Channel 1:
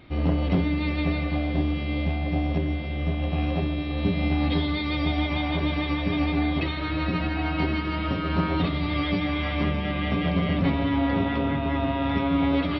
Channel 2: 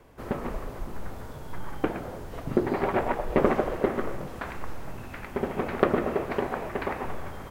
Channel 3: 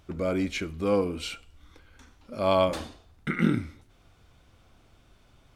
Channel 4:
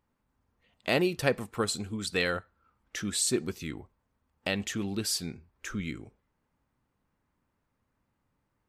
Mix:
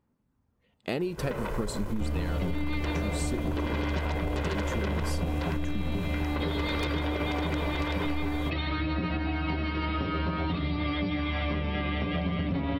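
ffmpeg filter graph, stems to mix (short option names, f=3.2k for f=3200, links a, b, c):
-filter_complex "[0:a]adelay=1900,volume=1.5dB[a];[1:a]aeval=exprs='0.596*sin(PI/2*2*val(0)/0.596)':c=same,aeval=exprs='0.631*(cos(1*acos(clip(val(0)/0.631,-1,1)))-cos(1*PI/2))+0.251*(cos(7*acos(clip(val(0)/0.631,-1,1)))-cos(7*PI/2))':c=same,adelay=1000,volume=-11.5dB[b];[3:a]equalizer=f=190:t=o:w=3:g=10,volume=-5dB[c];[a][c]amix=inputs=2:normalize=0,aphaser=in_gain=1:out_gain=1:delay=2.4:decay=0.24:speed=0.55:type=sinusoidal,acompressor=threshold=-24dB:ratio=6,volume=0dB[d];[b]aecho=1:1:2:0.48,alimiter=limit=-21.5dB:level=0:latency=1:release=51,volume=0dB[e];[d][e]amix=inputs=2:normalize=0,acompressor=threshold=-25dB:ratio=6"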